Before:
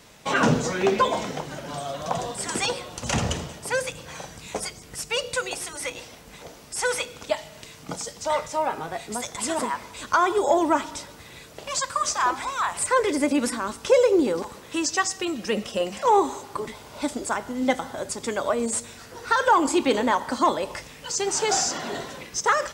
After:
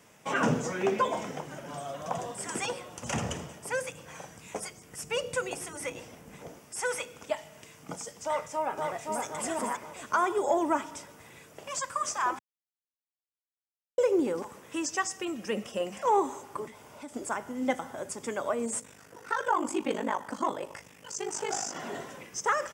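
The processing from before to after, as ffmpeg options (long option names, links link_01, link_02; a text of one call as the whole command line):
ffmpeg -i in.wav -filter_complex "[0:a]asettb=1/sr,asplit=3[link_01][link_02][link_03];[link_01]atrim=end=5.024[link_04];[link_02]atrim=start=5.02:end=6.59,asetpts=PTS-STARTPTS,afade=type=in:duration=0.004:curve=qsin,afade=type=out:start_time=1.566:duration=0.004:curve=qsin,lowshelf=frequency=480:gain=8[link_05];[link_03]atrim=start=6.586[link_06];[link_04][link_05]acrossfade=duration=0.004:curve1=hsin:curve2=qsin[link_07];[link_07][link_06]acrossfade=duration=0.004:curve1=qsin:curve2=hsin,asplit=2[link_08][link_09];[link_09]afade=type=in:start_time=8.25:duration=0.01,afade=type=out:start_time=9.24:duration=0.01,aecho=0:1:520|1040|1560|2080|2600:0.668344|0.267338|0.106935|0.042774|0.0171096[link_10];[link_08][link_10]amix=inputs=2:normalize=0,asettb=1/sr,asplit=3[link_11][link_12][link_13];[link_11]atrim=end=16.674[link_14];[link_12]atrim=start=16.67:end=17.14,asetpts=PTS-STARTPTS,afade=type=in:duration=0.004:curve=qsin,afade=type=out:start_time=0.466:duration=0.004:curve=qsin,acompressor=threshold=-40dB:ratio=2:attack=3.2:release=140:knee=1:detection=peak[link_15];[link_13]atrim=start=17.136[link_16];[link_14][link_15]acrossfade=duration=0.004:curve1=hsin:curve2=qsin[link_17];[link_17][link_16]acrossfade=duration=0.004:curve1=qsin:curve2=hsin,asettb=1/sr,asplit=3[link_18][link_19][link_20];[link_18]atrim=end=18.804[link_21];[link_19]atrim=start=18.8:end=21.76,asetpts=PTS-STARTPTS,afade=type=in:duration=0.004:curve=qsin,afade=type=out:start_time=2.956:duration=0.004:curve=qsin,aeval=exprs='val(0)*sin(2*PI*25*n/s)':channel_layout=same[link_22];[link_20]atrim=start=21.756[link_23];[link_21][link_22]acrossfade=duration=0.004:curve1=hsin:curve2=qsin[link_24];[link_24][link_23]acrossfade=duration=0.004:curve1=qsin:curve2=hsin,asplit=3[link_25][link_26][link_27];[link_25]atrim=end=12.39,asetpts=PTS-STARTPTS,afade=type=out:start_time=12.386:duration=0.004:curve=hsin[link_28];[link_26]atrim=start=12.39:end=13.98,asetpts=PTS-STARTPTS,volume=0[link_29];[link_27]atrim=start=13.98,asetpts=PTS-STARTPTS,afade=type=in:duration=0.004:curve=hsin[link_30];[link_28][link_29][link_30]concat=n=3:v=0:a=1,highpass=100,equalizer=frequency=4100:width=3.2:gain=-12.5,volume=-6dB" out.wav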